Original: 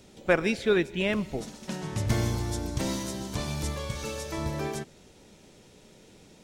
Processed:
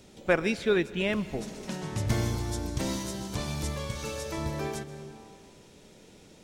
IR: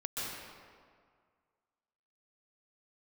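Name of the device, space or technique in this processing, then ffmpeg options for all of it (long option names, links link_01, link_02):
ducked reverb: -filter_complex "[0:a]asplit=3[link_01][link_02][link_03];[1:a]atrim=start_sample=2205[link_04];[link_02][link_04]afir=irnorm=-1:irlink=0[link_05];[link_03]apad=whole_len=283688[link_06];[link_05][link_06]sidechaincompress=threshold=-34dB:ratio=8:attack=5.3:release=474,volume=-11dB[link_07];[link_01][link_07]amix=inputs=2:normalize=0,volume=-1.5dB"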